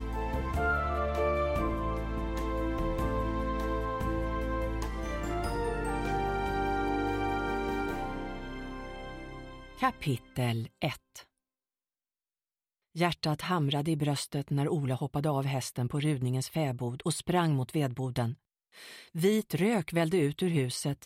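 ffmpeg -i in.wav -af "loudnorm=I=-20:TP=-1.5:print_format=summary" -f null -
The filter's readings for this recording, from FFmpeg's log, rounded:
Input Integrated:    -31.5 LUFS
Input True Peak:     -14.7 dBTP
Input LRA:             4.7 LU
Input Threshold:     -41.9 LUFS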